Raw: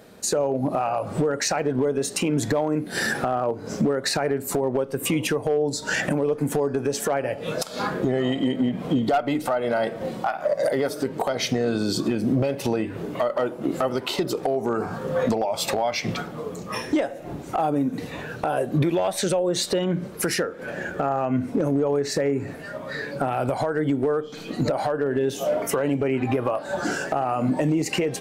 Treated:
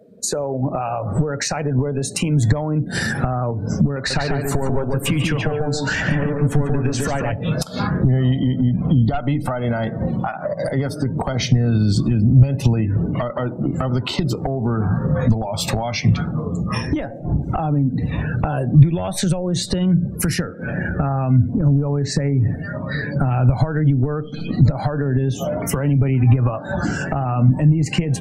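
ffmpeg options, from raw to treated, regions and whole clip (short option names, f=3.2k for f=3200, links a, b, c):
-filter_complex "[0:a]asettb=1/sr,asplit=3[a][b][c];[a]atrim=end=3.964[d];[b]atrim=start=3.96:end=7.32,asetpts=PTS-STARTPTS,afade=t=in:d=0.004:c=qsin,afade=t=out:st=3.356:d=0.004:c=qsin,asplit=2[e][f];[f]highpass=f=720:p=1,volume=12dB,asoftclip=type=tanh:threshold=-14.5dB[g];[e][g]amix=inputs=2:normalize=0,lowpass=f=3.6k:p=1,volume=-6dB,asplit=2[h][i];[i]adelay=142,lowpass=f=4k:p=1,volume=-3dB,asplit=2[j][k];[k]adelay=142,lowpass=f=4k:p=1,volume=0.29,asplit=2[l][m];[m]adelay=142,lowpass=f=4k:p=1,volume=0.29,asplit=2[n][o];[o]adelay=142,lowpass=f=4k:p=1,volume=0.29[p];[h][j][l][n][p]amix=inputs=5:normalize=0,atrim=end_sample=148176[q];[c]atrim=start=7.316[r];[d][q]acrossfade=d=0.004:c1=hsin:c2=qsin[s];[s][r]acrossfade=d=0.004:c1=qsin:c2=hsin,afftdn=nr=27:nf=-40,asubboost=boost=8:cutoff=150,acrossover=split=140[t][u];[u]acompressor=threshold=-26dB:ratio=6[v];[t][v]amix=inputs=2:normalize=0,volume=6dB"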